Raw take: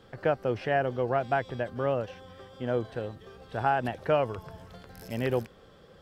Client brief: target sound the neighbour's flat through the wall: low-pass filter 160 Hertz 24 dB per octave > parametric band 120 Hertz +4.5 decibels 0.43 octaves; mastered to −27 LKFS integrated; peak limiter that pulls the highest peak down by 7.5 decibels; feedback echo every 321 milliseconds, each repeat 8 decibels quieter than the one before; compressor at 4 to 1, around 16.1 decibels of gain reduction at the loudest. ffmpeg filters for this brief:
ffmpeg -i in.wav -af "acompressor=threshold=-41dB:ratio=4,alimiter=level_in=9dB:limit=-24dB:level=0:latency=1,volume=-9dB,lowpass=frequency=160:width=0.5412,lowpass=frequency=160:width=1.3066,equalizer=frequency=120:width_type=o:width=0.43:gain=4.5,aecho=1:1:321|642|963|1284|1605:0.398|0.159|0.0637|0.0255|0.0102,volume=24.5dB" out.wav

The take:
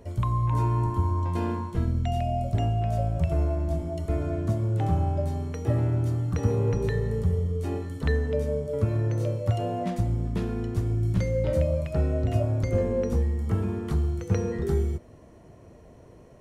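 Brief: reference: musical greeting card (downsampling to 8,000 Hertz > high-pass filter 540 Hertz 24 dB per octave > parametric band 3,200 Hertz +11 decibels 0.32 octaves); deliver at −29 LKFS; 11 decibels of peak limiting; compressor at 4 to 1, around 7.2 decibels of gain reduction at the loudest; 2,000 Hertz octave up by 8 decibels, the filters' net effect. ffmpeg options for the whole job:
ffmpeg -i in.wav -af "equalizer=frequency=2000:width_type=o:gain=8.5,acompressor=threshold=-28dB:ratio=4,alimiter=level_in=3.5dB:limit=-24dB:level=0:latency=1,volume=-3.5dB,aresample=8000,aresample=44100,highpass=frequency=540:width=0.5412,highpass=frequency=540:width=1.3066,equalizer=frequency=3200:width_type=o:width=0.32:gain=11,volume=14.5dB" out.wav

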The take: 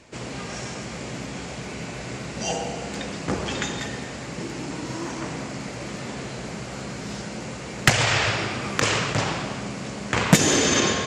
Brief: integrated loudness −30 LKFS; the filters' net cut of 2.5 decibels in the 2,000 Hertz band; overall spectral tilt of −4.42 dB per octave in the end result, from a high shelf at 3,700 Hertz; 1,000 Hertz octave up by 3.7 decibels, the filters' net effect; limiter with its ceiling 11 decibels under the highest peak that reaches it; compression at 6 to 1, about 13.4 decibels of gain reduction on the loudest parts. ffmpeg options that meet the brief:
ffmpeg -i in.wav -af "equalizer=frequency=1000:width_type=o:gain=6,equalizer=frequency=2000:width_type=o:gain=-4,highshelf=frequency=3700:gain=-3.5,acompressor=threshold=-24dB:ratio=6,volume=2dB,alimiter=limit=-18.5dB:level=0:latency=1" out.wav

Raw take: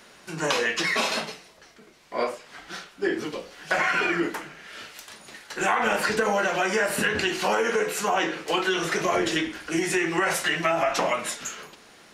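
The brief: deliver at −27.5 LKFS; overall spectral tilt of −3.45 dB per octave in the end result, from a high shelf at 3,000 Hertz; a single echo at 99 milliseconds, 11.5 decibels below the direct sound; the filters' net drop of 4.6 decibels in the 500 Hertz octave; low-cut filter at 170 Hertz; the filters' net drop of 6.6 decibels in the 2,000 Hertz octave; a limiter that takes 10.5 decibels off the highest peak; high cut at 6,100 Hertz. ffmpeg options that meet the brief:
ffmpeg -i in.wav -af "highpass=170,lowpass=6100,equalizer=frequency=500:width_type=o:gain=-5.5,equalizer=frequency=2000:width_type=o:gain=-7,highshelf=frequency=3000:gain=-4,alimiter=level_in=1dB:limit=-24dB:level=0:latency=1,volume=-1dB,aecho=1:1:99:0.266,volume=7dB" out.wav

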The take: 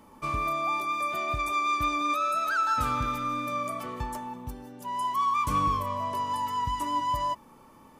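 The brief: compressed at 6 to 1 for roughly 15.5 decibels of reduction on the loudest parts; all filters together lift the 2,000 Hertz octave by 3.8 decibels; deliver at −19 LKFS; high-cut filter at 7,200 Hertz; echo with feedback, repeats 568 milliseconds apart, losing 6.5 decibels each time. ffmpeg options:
ffmpeg -i in.wav -af "lowpass=7200,equalizer=frequency=2000:width_type=o:gain=5,acompressor=threshold=-39dB:ratio=6,aecho=1:1:568|1136|1704|2272|2840|3408:0.473|0.222|0.105|0.0491|0.0231|0.0109,volume=20.5dB" out.wav

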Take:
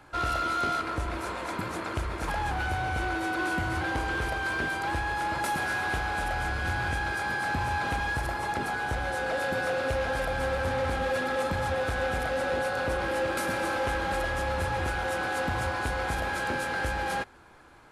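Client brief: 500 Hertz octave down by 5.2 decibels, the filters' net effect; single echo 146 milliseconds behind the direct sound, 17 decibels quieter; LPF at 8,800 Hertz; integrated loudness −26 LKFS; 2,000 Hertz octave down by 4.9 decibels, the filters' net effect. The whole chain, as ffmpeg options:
ffmpeg -i in.wav -af "lowpass=8800,equalizer=frequency=500:width_type=o:gain=-5.5,equalizer=frequency=2000:width_type=o:gain=-6.5,aecho=1:1:146:0.141,volume=6.5dB" out.wav

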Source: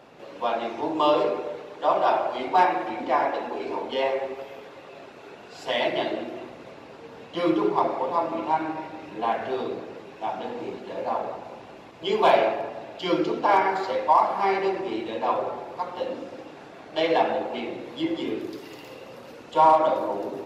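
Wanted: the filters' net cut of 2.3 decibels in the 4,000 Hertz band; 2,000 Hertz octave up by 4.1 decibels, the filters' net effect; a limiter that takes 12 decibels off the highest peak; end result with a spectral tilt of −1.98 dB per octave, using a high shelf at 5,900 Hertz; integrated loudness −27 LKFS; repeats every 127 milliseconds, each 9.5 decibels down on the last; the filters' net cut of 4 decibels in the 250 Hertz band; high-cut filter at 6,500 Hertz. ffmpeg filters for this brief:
ffmpeg -i in.wav -af "lowpass=6500,equalizer=frequency=250:width_type=o:gain=-6.5,equalizer=frequency=2000:width_type=o:gain=6.5,equalizer=frequency=4000:width_type=o:gain=-8.5,highshelf=frequency=5900:gain=6.5,alimiter=limit=-18.5dB:level=0:latency=1,aecho=1:1:127|254|381|508:0.335|0.111|0.0365|0.012,volume=2.5dB" out.wav

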